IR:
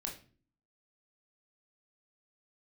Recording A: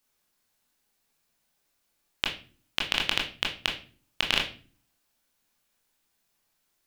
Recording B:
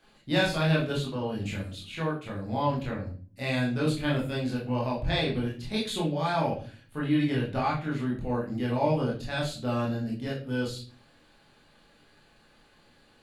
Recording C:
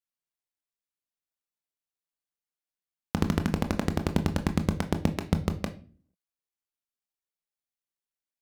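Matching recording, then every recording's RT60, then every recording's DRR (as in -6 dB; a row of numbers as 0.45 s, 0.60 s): A; 0.40 s, 0.40 s, no single decay rate; -0.5 dB, -5.0 dB, 7.5 dB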